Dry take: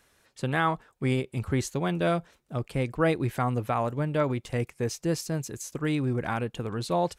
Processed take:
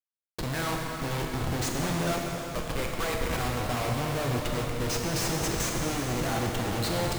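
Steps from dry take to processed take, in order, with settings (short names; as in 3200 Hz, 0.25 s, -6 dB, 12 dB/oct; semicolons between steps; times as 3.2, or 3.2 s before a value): 2.07–3.37 HPF 1000 Hz 12 dB/oct; Schmitt trigger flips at -40 dBFS; plate-style reverb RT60 4 s, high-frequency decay 0.9×, DRR -1 dB; gain -2 dB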